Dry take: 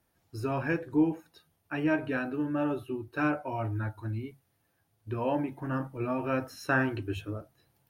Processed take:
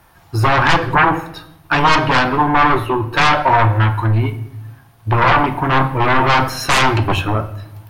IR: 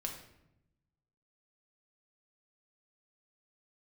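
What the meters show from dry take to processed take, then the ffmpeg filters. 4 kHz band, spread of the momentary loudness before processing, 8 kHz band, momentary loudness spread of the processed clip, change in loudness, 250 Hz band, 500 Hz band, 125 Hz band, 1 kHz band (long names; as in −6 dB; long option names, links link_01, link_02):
+28.5 dB, 11 LU, can't be measured, 10 LU, +17.0 dB, +9.0 dB, +13.0 dB, +18.5 dB, +24.0 dB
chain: -filter_complex "[0:a]aeval=exprs='0.2*sin(PI/2*6.31*val(0)/0.2)':channel_layout=same,equalizer=frequency=250:width_type=o:width=1:gain=-6,equalizer=frequency=500:width_type=o:width=1:gain=-5,equalizer=frequency=1000:width_type=o:width=1:gain=7,asplit=2[link_01][link_02];[1:a]atrim=start_sample=2205,lowpass=4700[link_03];[link_02][link_03]afir=irnorm=-1:irlink=0,volume=-2dB[link_04];[link_01][link_04]amix=inputs=2:normalize=0"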